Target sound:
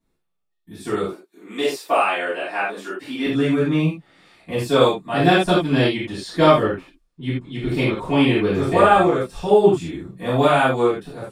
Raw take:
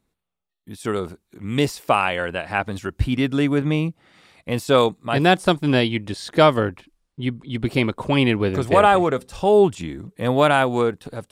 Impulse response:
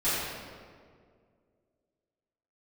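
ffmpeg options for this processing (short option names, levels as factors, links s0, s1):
-filter_complex "[0:a]asettb=1/sr,asplit=3[s0][s1][s2];[s0]atrim=end=1.034[s3];[s1]atrim=start=1.03:end=3.26,asetpts=PTS-STARTPTS,afade=t=in:d=0.004:c=qsin,afade=t=out:st=2.226:d=0.004:c=qsin,highpass=f=280:w=0.5412,highpass=f=280:w=1.3066[s4];[s2]atrim=start=3.256[s5];[s3][s4]acrossfade=d=0.004:c1=hsin:c2=qsin[s6];[s6][s5]acrossfade=d=0.004:c1=qsin:c2=hsin[s7];[1:a]atrim=start_sample=2205,atrim=end_sample=4410[s8];[s7][s8]afir=irnorm=-1:irlink=0,volume=0.355"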